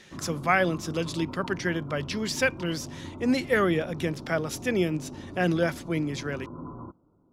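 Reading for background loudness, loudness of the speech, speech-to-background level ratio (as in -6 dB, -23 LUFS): -41.0 LUFS, -28.0 LUFS, 13.0 dB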